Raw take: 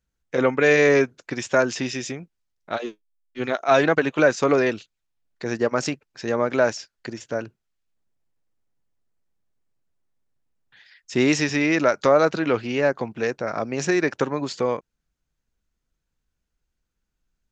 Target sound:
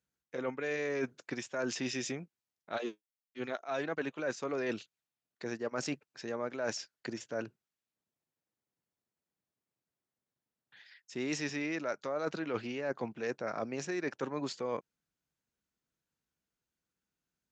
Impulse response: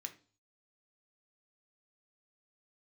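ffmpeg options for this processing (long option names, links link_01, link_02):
-af "highpass=130,areverse,acompressor=threshold=-26dB:ratio=12,areverse,volume=-5.5dB"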